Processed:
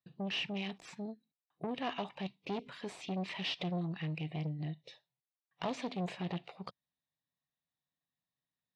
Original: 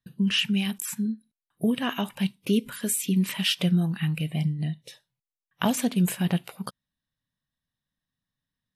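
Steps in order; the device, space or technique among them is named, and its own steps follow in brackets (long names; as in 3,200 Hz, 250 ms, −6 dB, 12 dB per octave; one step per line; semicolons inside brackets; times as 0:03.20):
guitar amplifier (tube saturation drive 25 dB, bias 0.35; bass and treble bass −2 dB, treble +9 dB; loudspeaker in its box 98–3,700 Hz, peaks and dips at 100 Hz −8 dB, 220 Hz −8 dB, 730 Hz +6 dB, 1,500 Hz −8 dB, 3,100 Hz −6 dB)
level −4 dB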